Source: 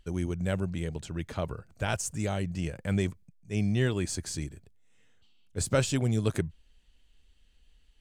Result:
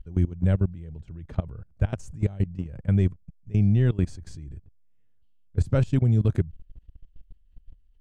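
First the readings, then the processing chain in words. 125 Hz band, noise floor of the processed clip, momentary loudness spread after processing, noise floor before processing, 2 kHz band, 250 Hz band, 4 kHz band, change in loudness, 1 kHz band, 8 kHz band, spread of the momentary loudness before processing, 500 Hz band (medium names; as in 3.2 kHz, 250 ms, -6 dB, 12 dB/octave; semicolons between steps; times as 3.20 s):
+8.0 dB, -58 dBFS, 19 LU, -63 dBFS, -6.5 dB, +3.5 dB, under -10 dB, +5.5 dB, -5.5 dB, under -15 dB, 10 LU, -1.0 dB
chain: RIAA curve playback; level held to a coarse grid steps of 19 dB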